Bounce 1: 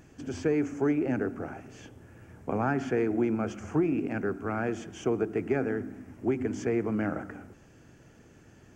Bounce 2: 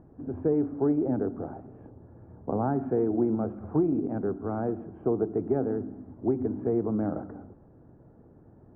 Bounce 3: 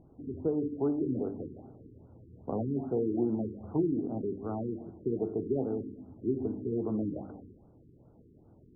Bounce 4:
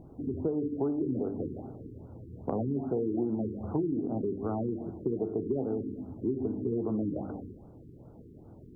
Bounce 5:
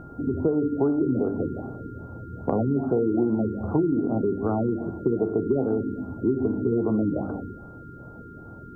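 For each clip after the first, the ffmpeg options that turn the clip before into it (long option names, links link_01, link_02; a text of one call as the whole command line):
ffmpeg -i in.wav -af "lowpass=frequency=1000:width=0.5412,lowpass=frequency=1000:width=1.3066,volume=1.5dB" out.wav
ffmpeg -i in.wav -af "bandreject=frequency=49.52:width_type=h:width=4,bandreject=frequency=99.04:width_type=h:width=4,bandreject=frequency=148.56:width_type=h:width=4,bandreject=frequency=198.08:width_type=h:width=4,bandreject=frequency=247.6:width_type=h:width=4,bandreject=frequency=297.12:width_type=h:width=4,bandreject=frequency=346.64:width_type=h:width=4,bandreject=frequency=396.16:width_type=h:width=4,bandreject=frequency=445.68:width_type=h:width=4,bandreject=frequency=495.2:width_type=h:width=4,bandreject=frequency=544.72:width_type=h:width=4,bandreject=frequency=594.24:width_type=h:width=4,bandreject=frequency=643.76:width_type=h:width=4,bandreject=frequency=693.28:width_type=h:width=4,bandreject=frequency=742.8:width_type=h:width=4,bandreject=frequency=792.32:width_type=h:width=4,bandreject=frequency=841.84:width_type=h:width=4,bandreject=frequency=891.36:width_type=h:width=4,bandreject=frequency=940.88:width_type=h:width=4,bandreject=frequency=990.4:width_type=h:width=4,bandreject=frequency=1039.92:width_type=h:width=4,bandreject=frequency=1089.44:width_type=h:width=4,bandreject=frequency=1138.96:width_type=h:width=4,bandreject=frequency=1188.48:width_type=h:width=4,bandreject=frequency=1238:width_type=h:width=4,bandreject=frequency=1287.52:width_type=h:width=4,bandreject=frequency=1337.04:width_type=h:width=4,bandreject=frequency=1386.56:width_type=h:width=4,bandreject=frequency=1436.08:width_type=h:width=4,bandreject=frequency=1485.6:width_type=h:width=4,bandreject=frequency=1535.12:width_type=h:width=4,bandreject=frequency=1584.64:width_type=h:width=4,bandreject=frequency=1634.16:width_type=h:width=4,afftfilt=real='re*lt(b*sr/1024,440*pow(1600/440,0.5+0.5*sin(2*PI*2.5*pts/sr)))':imag='im*lt(b*sr/1024,440*pow(1600/440,0.5+0.5*sin(2*PI*2.5*pts/sr)))':win_size=1024:overlap=0.75,volume=-3.5dB" out.wav
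ffmpeg -i in.wav -af "acompressor=threshold=-37dB:ratio=3,volume=7.5dB" out.wav
ffmpeg -i in.wav -af "aeval=exprs='val(0)+0.002*sin(2*PI*1400*n/s)':channel_layout=same,volume=7.5dB" out.wav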